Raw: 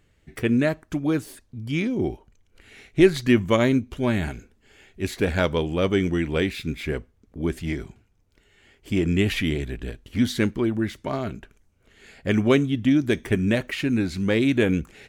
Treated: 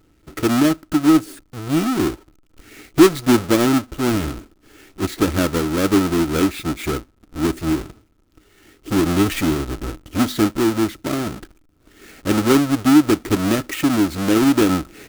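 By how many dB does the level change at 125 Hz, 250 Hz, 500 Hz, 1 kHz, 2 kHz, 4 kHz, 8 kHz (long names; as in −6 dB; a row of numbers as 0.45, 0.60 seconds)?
+1.0, +6.0, +2.5, +10.0, +1.5, +5.5, +13.0 decibels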